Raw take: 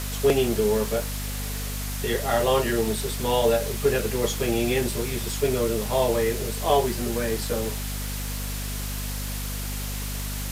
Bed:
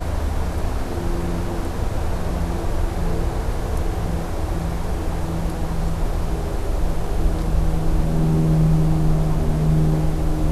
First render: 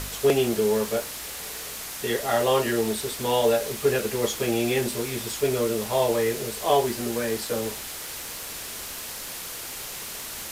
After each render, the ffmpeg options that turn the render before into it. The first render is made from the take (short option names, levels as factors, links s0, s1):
-af "bandreject=f=50:t=h:w=4,bandreject=f=100:t=h:w=4,bandreject=f=150:t=h:w=4,bandreject=f=200:t=h:w=4,bandreject=f=250:t=h:w=4"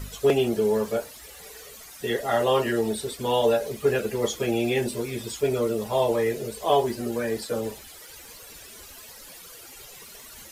-af "afftdn=nr=14:nf=-36"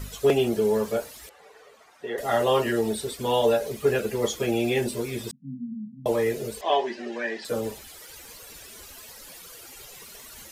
-filter_complex "[0:a]asettb=1/sr,asplit=3[s0][s1][s2];[s0]atrim=end=1.294[s3];[s1]atrim=start=1.29:end=2.18,asetpts=PTS-STARTPTS,afade=t=in:d=0.004:c=qsin,afade=t=out:st=0.886:d=0.004:c=qsin,bandpass=f=820:t=q:w=0.9[s4];[s2]atrim=start=2.176[s5];[s3][s4]acrossfade=d=0.004:c1=hsin:c2=qsin[s6];[s6][s5]acrossfade=d=0.004:c1=qsin:c2=hsin,asettb=1/sr,asplit=3[s7][s8][s9];[s7]atrim=end=5.314[s10];[s8]atrim=start=5.31:end=6.06,asetpts=PTS-STARTPTS,afade=t=in:d=0.004:c=qsin,afade=t=out:st=0.746:d=0.004:c=qsin,asuperpass=centerf=190:order=20:qfactor=1.4[s11];[s9]atrim=start=6.056[s12];[s10][s11]acrossfade=d=0.004:c1=hsin:c2=qsin[s13];[s13][s12]acrossfade=d=0.004:c1=qsin:c2=hsin,asettb=1/sr,asplit=3[s14][s15][s16];[s14]atrim=end=6.614[s17];[s15]atrim=start=6.61:end=7.45,asetpts=PTS-STARTPTS,afade=t=in:d=0.004:c=qsin,afade=t=out:st=0.836:d=0.004:c=qsin,highpass=f=260:w=0.5412,highpass=f=260:w=1.3066,equalizer=f=290:t=q:w=4:g=-5,equalizer=f=470:t=q:w=4:g=-8,equalizer=f=1300:t=q:w=4:g=-6,equalizer=f=1800:t=q:w=4:g=9,equalizer=f=2700:t=q:w=4:g=4,equalizer=f=4500:t=q:w=4:g=-4,lowpass=f=5300:w=0.5412,lowpass=f=5300:w=1.3066[s18];[s16]atrim=start=7.446[s19];[s17][s18]acrossfade=d=0.004:c1=hsin:c2=qsin[s20];[s20][s19]acrossfade=d=0.004:c1=qsin:c2=hsin"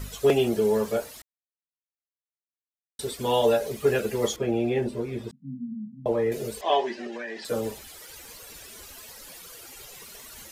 -filter_complex "[0:a]asettb=1/sr,asplit=3[s0][s1][s2];[s0]atrim=end=4.364[s3];[s1]atrim=start=4.36:end=6.32,asetpts=PTS-STARTPTS,afade=t=in:d=0.004:c=qsin,afade=t=out:st=1.956:d=0.004:c=qsin,lowpass=f=1100:p=1[s4];[s2]atrim=start=6.316[s5];[s3][s4]acrossfade=d=0.004:c1=hsin:c2=qsin[s6];[s6][s5]acrossfade=d=0.004:c1=qsin:c2=hsin,asettb=1/sr,asplit=3[s7][s8][s9];[s7]atrim=end=7.064[s10];[s8]atrim=start=7.06:end=7.48,asetpts=PTS-STARTPTS,afade=t=in:d=0.004:c=qsin,afade=t=out:st=0.416:d=0.004:c=qsin,acompressor=threshold=0.0282:ratio=6:attack=3.2:release=140:knee=1:detection=peak[s11];[s9]atrim=start=7.476[s12];[s10][s11]acrossfade=d=0.004:c1=hsin:c2=qsin[s13];[s13][s12]acrossfade=d=0.004:c1=qsin:c2=hsin,asplit=3[s14][s15][s16];[s14]atrim=end=1.22,asetpts=PTS-STARTPTS,afade=t=out:st=1.216:d=0.004:c=hsin[s17];[s15]atrim=start=1.22:end=2.99,asetpts=PTS-STARTPTS,volume=0[s18];[s16]atrim=start=2.99,asetpts=PTS-STARTPTS,afade=t=in:d=0.004:c=hsin[s19];[s17][s18][s19]concat=n=3:v=0:a=1"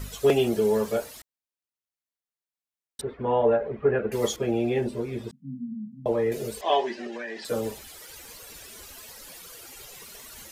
-filter_complex "[0:a]asettb=1/sr,asplit=3[s0][s1][s2];[s0]atrim=end=3.014[s3];[s1]atrim=start=3.01:end=4.12,asetpts=PTS-STARTPTS,afade=t=in:d=0.004:c=qsin,afade=t=out:st=1.106:d=0.004:c=qsin,lowpass=f=1900:w=0.5412,lowpass=f=1900:w=1.3066[s4];[s2]atrim=start=4.116[s5];[s3][s4]acrossfade=d=0.004:c1=hsin:c2=qsin[s6];[s6][s5]acrossfade=d=0.004:c1=qsin:c2=hsin"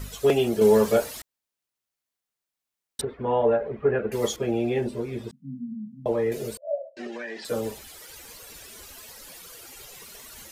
-filter_complex "[0:a]asettb=1/sr,asplit=3[s0][s1][s2];[s0]atrim=end=0.614[s3];[s1]atrim=start=0.61:end=3.05,asetpts=PTS-STARTPTS,afade=t=in:d=0.004:c=qsin,afade=t=out:st=2.436:d=0.004:c=qsin,acontrast=53[s4];[s2]atrim=start=3.046[s5];[s3][s4]acrossfade=d=0.004:c1=hsin:c2=qsin[s6];[s6][s5]acrossfade=d=0.004:c1=qsin:c2=hsin,asettb=1/sr,asplit=3[s7][s8][s9];[s7]atrim=end=6.574[s10];[s8]atrim=start=6.57:end=6.97,asetpts=PTS-STARTPTS,afade=t=in:d=0.004:c=qsin,afade=t=out:st=0.396:d=0.004:c=qsin,asuperpass=centerf=590:order=12:qfactor=4.3[s11];[s9]atrim=start=6.966[s12];[s10][s11]acrossfade=d=0.004:c1=hsin:c2=qsin[s13];[s13][s12]acrossfade=d=0.004:c1=qsin:c2=hsin"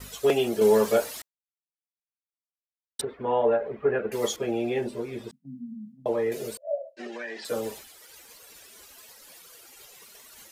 -af "agate=range=0.0224:threshold=0.0112:ratio=3:detection=peak,lowshelf=f=170:g=-11.5"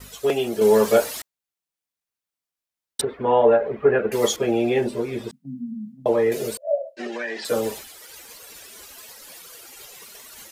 -af "dynaudnorm=f=500:g=3:m=2.24"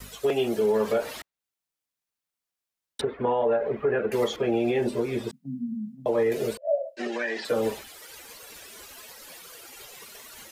-filter_complex "[0:a]acrossover=split=250|990|3800[s0][s1][s2][s3];[s3]acompressor=threshold=0.00562:ratio=6[s4];[s0][s1][s2][s4]amix=inputs=4:normalize=0,alimiter=limit=0.158:level=0:latency=1:release=117"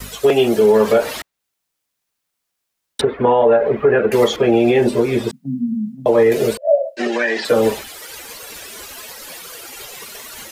-af "volume=3.55"